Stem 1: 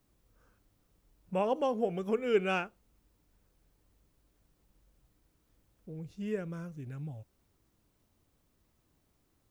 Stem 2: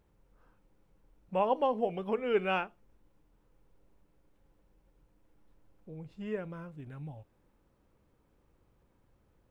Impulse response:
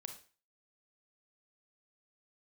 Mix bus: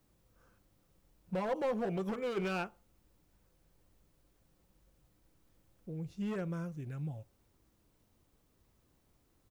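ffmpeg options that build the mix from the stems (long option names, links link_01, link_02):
-filter_complex "[0:a]alimiter=level_in=1.5dB:limit=-24dB:level=0:latency=1:release=27,volume=-1.5dB,asoftclip=type=hard:threshold=-33dB,volume=0.5dB[link_01];[1:a]lowpass=1100,adelay=5.7,volume=-12dB,asplit=2[link_02][link_03];[link_03]volume=-4.5dB[link_04];[2:a]atrim=start_sample=2205[link_05];[link_04][link_05]afir=irnorm=-1:irlink=0[link_06];[link_01][link_02][link_06]amix=inputs=3:normalize=0"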